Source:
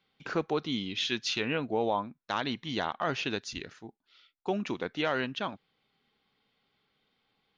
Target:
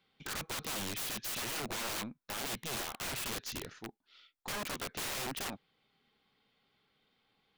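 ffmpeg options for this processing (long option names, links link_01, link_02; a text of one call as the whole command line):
ffmpeg -i in.wav -af "aeval=exprs='(mod(44.7*val(0)+1,2)-1)/44.7':channel_layout=same,aeval=exprs='0.0224*(cos(1*acos(clip(val(0)/0.0224,-1,1)))-cos(1*PI/2))+0.000708*(cos(6*acos(clip(val(0)/0.0224,-1,1)))-cos(6*PI/2))':channel_layout=same" out.wav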